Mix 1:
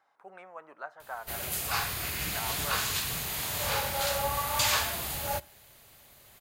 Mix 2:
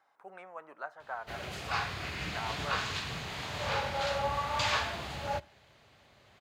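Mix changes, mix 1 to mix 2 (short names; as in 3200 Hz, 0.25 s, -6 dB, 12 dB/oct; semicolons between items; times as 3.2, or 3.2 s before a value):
background: add air absorption 160 m; master: add HPF 64 Hz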